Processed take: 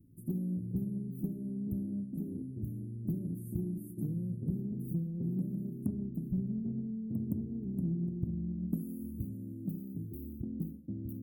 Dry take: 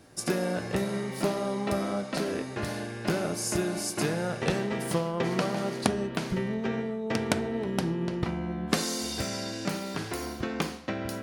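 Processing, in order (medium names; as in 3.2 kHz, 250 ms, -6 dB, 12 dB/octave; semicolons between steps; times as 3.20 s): inverse Chebyshev band-stop 970–5300 Hz, stop band 70 dB; in parallel at -9 dB: saturation -27.5 dBFS, distortion -14 dB; on the sum: reverberation, pre-delay 3 ms, DRR 14 dB; trim -4.5 dB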